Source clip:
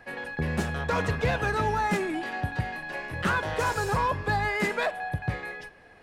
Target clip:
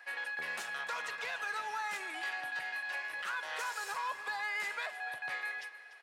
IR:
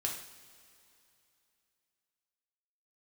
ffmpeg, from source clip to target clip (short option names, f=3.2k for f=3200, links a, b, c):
-filter_complex "[0:a]highpass=1.2k,alimiter=level_in=5dB:limit=-24dB:level=0:latency=1:release=266,volume=-5dB,asplit=2[a][b];[b]aecho=0:1:293:0.188[c];[a][c]amix=inputs=2:normalize=0"